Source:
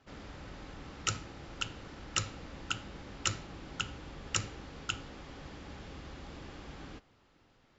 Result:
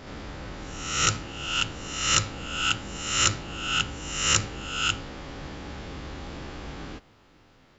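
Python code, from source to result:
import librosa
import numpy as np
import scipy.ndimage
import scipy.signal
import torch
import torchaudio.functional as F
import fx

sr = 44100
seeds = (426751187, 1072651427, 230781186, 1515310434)

y = fx.spec_swells(x, sr, rise_s=0.83)
y = F.gain(torch.from_numpy(y), 6.5).numpy()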